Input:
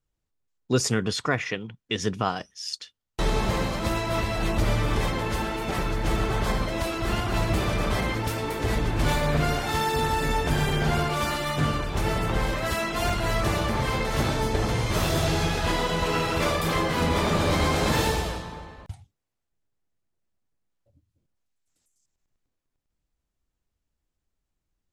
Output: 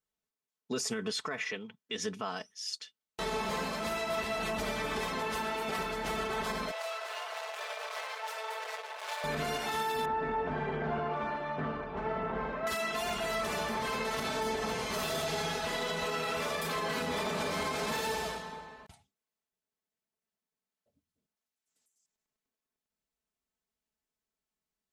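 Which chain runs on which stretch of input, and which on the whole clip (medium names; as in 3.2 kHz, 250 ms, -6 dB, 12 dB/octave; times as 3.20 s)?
6.71–9.24 s: treble shelf 7.9 kHz -9.5 dB + overload inside the chain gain 28.5 dB + steep high-pass 490 Hz 48 dB/octave
10.05–12.67 s: low-pass 1.4 kHz + loudspeaker Doppler distortion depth 0.1 ms
whole clip: high-pass 340 Hz 6 dB/octave; comb 4.6 ms, depth 66%; peak limiter -19 dBFS; trim -5.5 dB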